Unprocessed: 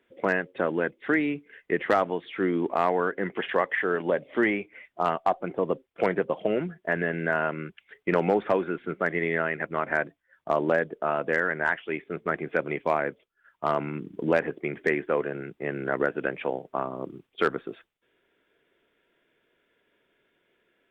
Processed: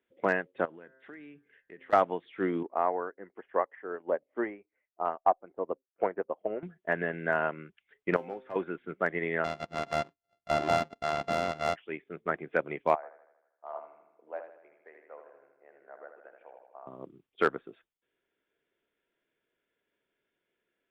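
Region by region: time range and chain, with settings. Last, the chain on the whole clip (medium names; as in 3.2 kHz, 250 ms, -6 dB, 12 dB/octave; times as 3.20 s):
0.65–1.93 s: de-hum 131.9 Hz, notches 15 + compression 2.5:1, threshold -39 dBFS
2.63–6.63 s: low-pass 1.4 kHz + peaking EQ 150 Hz -11 dB 1 oct + upward expansion, over -47 dBFS
8.16–8.56 s: upward compressor, threshold -27 dBFS + feedback comb 130 Hz, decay 0.39 s, mix 80%
9.44–11.76 s: sorted samples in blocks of 64 samples + distance through air 150 m + hard clipper -17 dBFS
12.95–16.87 s: ladder band-pass 830 Hz, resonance 40% + feedback delay 79 ms, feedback 57%, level -5 dB
whole clip: dynamic bell 820 Hz, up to +4 dB, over -33 dBFS, Q 1; upward expansion 1.5:1, over -39 dBFS; trim -2 dB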